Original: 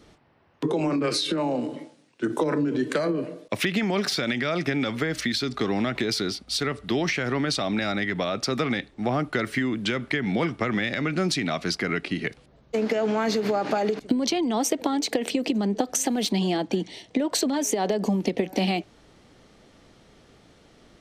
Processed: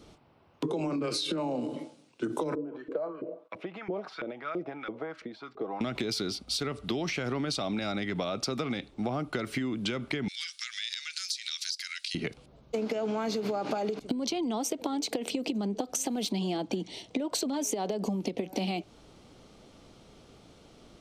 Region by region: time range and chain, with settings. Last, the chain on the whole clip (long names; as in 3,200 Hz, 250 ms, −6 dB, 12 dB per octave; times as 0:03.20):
0:02.55–0:05.81: high-shelf EQ 4,200 Hz −10.5 dB + comb filter 6.2 ms, depth 36% + auto-filter band-pass saw up 3 Hz 370–1,800 Hz
0:10.28–0:12.15: elliptic high-pass filter 1,700 Hz, stop band 70 dB + high shelf with overshoot 3,300 Hz +11 dB, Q 1.5 + downward compressor, threshold −28 dBFS
whole clip: parametric band 1,800 Hz −9.5 dB 0.37 octaves; downward compressor 4 to 1, threshold −29 dBFS